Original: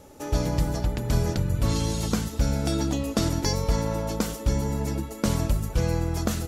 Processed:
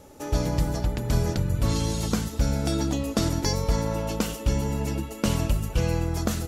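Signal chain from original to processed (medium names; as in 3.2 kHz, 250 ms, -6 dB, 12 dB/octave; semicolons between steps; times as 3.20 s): 3.96–6.06 s: peaking EQ 2.8 kHz +9 dB 0.28 oct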